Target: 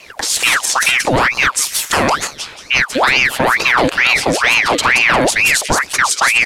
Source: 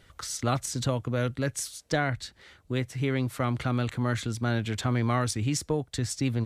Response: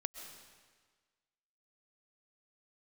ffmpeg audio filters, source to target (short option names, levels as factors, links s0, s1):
-filter_complex "[0:a]acrossover=split=380|3000[s0][s1][s2];[s1]acompressor=threshold=0.0282:ratio=6[s3];[s0][s3][s2]amix=inputs=3:normalize=0,acrossover=split=1600[s4][s5];[s4]asoftclip=type=tanh:threshold=0.0531[s6];[s5]aecho=1:1:176|352|528|704:0.668|0.18|0.0487|0.0132[s7];[s6][s7]amix=inputs=2:normalize=0,alimiter=level_in=11.2:limit=0.891:release=50:level=0:latency=1,aeval=exprs='val(0)*sin(2*PI*1500*n/s+1500*0.75/2.2*sin(2*PI*2.2*n/s))':c=same"